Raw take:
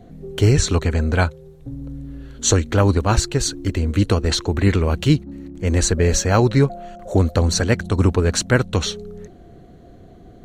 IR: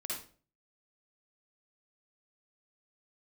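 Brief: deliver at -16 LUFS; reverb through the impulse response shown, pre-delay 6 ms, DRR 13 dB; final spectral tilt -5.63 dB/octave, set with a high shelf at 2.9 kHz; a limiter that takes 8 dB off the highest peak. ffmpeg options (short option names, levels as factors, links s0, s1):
-filter_complex "[0:a]highshelf=f=2900:g=-8,alimiter=limit=0.237:level=0:latency=1,asplit=2[s0][s1];[1:a]atrim=start_sample=2205,adelay=6[s2];[s1][s2]afir=irnorm=-1:irlink=0,volume=0.2[s3];[s0][s3]amix=inputs=2:normalize=0,volume=2.37"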